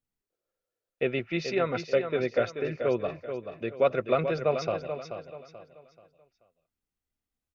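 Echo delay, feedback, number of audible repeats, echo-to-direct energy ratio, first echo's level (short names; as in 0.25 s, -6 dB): 0.433 s, 34%, 3, -8.0 dB, -8.5 dB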